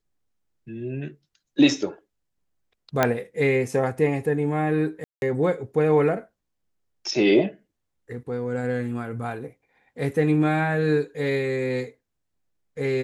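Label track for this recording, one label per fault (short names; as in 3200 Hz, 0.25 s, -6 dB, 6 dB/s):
3.030000	3.030000	pop -5 dBFS
5.040000	5.220000	gap 0.181 s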